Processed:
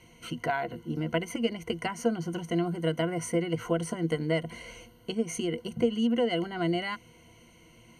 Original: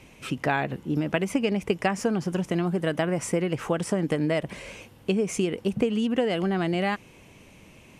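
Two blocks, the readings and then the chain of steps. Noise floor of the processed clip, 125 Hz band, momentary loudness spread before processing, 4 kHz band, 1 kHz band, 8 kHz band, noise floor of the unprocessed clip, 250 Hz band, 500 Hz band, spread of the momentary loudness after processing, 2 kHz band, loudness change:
-57 dBFS, -4.0 dB, 4 LU, -1.0 dB, -4.0 dB, -3.5 dB, -52 dBFS, -4.0 dB, -3.5 dB, 9 LU, -5.0 dB, -4.0 dB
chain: ripple EQ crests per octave 1.9, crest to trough 17 dB; gain -7.5 dB

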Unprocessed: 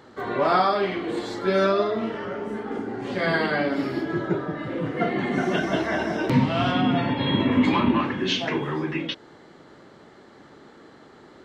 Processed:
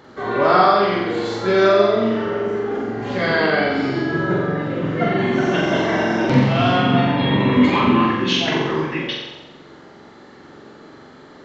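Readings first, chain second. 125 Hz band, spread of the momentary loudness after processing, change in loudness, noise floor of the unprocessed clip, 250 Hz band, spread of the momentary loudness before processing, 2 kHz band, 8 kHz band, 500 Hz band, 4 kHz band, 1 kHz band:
+6.5 dB, 9 LU, +6.0 dB, -50 dBFS, +5.0 dB, 10 LU, +6.5 dB, n/a, +7.0 dB, +6.0 dB, +6.5 dB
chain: downsampling 16000 Hz; flutter echo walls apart 7.6 m, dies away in 0.96 s; gain +3 dB

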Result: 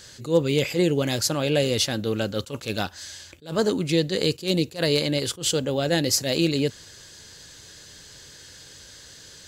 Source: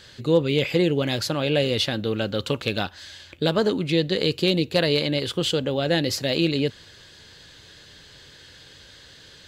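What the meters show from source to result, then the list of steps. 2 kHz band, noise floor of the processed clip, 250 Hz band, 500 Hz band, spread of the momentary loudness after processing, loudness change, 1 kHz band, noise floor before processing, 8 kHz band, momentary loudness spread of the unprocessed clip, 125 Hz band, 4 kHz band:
-2.0 dB, -47 dBFS, -1.0 dB, -1.0 dB, 22 LU, -0.5 dB, -1.5 dB, -49 dBFS, +9.5 dB, 6 LU, -1.0 dB, -1.0 dB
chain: resonant high shelf 4800 Hz +8.5 dB, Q 1.5; attack slew limiter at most 210 dB/s

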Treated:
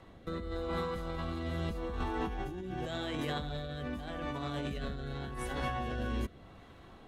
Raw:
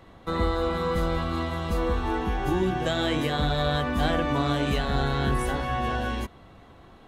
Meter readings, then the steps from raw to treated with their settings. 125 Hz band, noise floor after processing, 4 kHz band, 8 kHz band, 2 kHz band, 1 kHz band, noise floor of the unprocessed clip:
-10.5 dB, -55 dBFS, -12.0 dB, -10.5 dB, -11.5 dB, -12.0 dB, -51 dBFS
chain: negative-ratio compressor -30 dBFS, ratio -1; rotary speaker horn 0.85 Hz; gain -5 dB

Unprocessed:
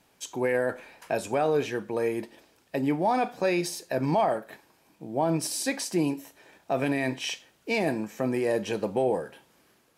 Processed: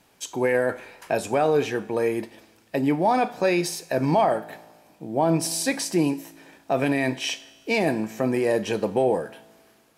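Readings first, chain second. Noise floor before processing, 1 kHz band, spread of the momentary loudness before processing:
-65 dBFS, +4.0 dB, 10 LU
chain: resonator 55 Hz, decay 1.5 s, harmonics all, mix 40%; gain +8 dB

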